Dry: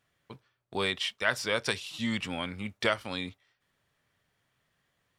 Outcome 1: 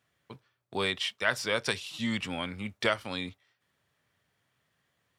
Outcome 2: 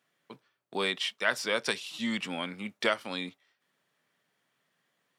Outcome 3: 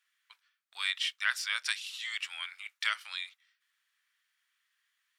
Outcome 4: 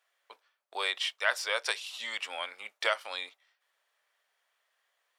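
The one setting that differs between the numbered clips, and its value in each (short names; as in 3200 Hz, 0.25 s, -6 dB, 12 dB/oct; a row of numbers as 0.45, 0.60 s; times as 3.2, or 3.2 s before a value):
HPF, cutoff: 62, 170, 1400, 560 Hz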